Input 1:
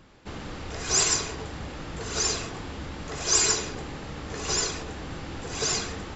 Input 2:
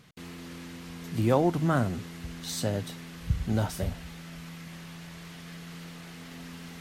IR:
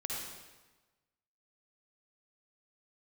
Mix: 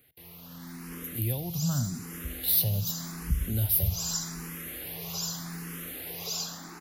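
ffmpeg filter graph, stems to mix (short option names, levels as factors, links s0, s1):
-filter_complex "[0:a]highpass=f=270:w=0.5412,highpass=f=270:w=1.3066,adelay=650,volume=0.891,asplit=2[s0][s1];[s1]volume=0.119[s2];[1:a]dynaudnorm=f=140:g=9:m=4.22,aexciter=amount=13.3:drive=4.5:freq=11000,volume=0.447,asplit=3[s3][s4][s5];[s4]volume=0.106[s6];[s5]apad=whole_len=300306[s7];[s0][s7]sidechaincompress=threshold=0.0126:ratio=8:attack=16:release=316[s8];[2:a]atrim=start_sample=2205[s9];[s2][s6]amix=inputs=2:normalize=0[s10];[s10][s9]afir=irnorm=-1:irlink=0[s11];[s8][s3][s11]amix=inputs=3:normalize=0,acrossover=split=190|3000[s12][s13][s14];[s13]acompressor=threshold=0.01:ratio=6[s15];[s12][s15][s14]amix=inputs=3:normalize=0,asplit=2[s16][s17];[s17]afreqshift=0.84[s18];[s16][s18]amix=inputs=2:normalize=1"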